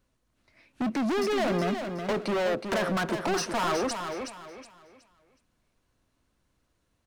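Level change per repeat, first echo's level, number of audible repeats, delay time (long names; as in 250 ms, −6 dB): −10.5 dB, −7.0 dB, 3, 369 ms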